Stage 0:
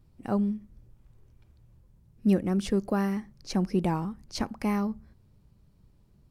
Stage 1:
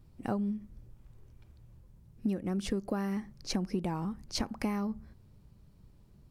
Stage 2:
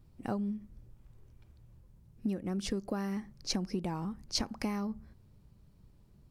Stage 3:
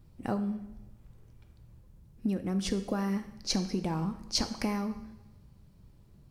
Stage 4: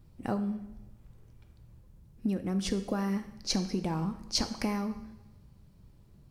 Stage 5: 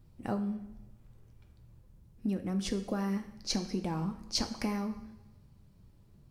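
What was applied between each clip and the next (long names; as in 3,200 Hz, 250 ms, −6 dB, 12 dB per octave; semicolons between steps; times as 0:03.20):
downward compressor 16 to 1, threshold −30 dBFS, peak gain reduction 13.5 dB; level +2 dB
dynamic equaliser 5,200 Hz, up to +6 dB, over −56 dBFS, Q 1.2; level −2 dB
coupled-rooms reverb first 0.89 s, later 2.4 s, from −26 dB, DRR 8 dB; level +3 dB
no processing that can be heard
flanger 1.1 Hz, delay 7.9 ms, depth 3 ms, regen −68%; level +2 dB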